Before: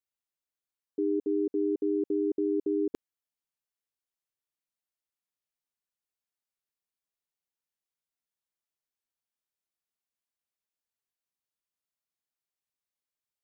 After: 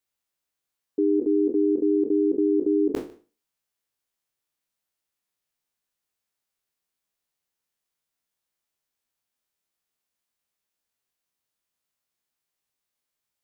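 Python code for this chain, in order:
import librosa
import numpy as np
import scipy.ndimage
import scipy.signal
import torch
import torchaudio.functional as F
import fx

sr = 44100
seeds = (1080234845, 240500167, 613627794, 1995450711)

y = fx.spec_trails(x, sr, decay_s=0.34)
y = y + 10.0 ** (-21.5 / 20.0) * np.pad(y, (int(150 * sr / 1000.0), 0))[:len(y)]
y = y * librosa.db_to_amplitude(6.5)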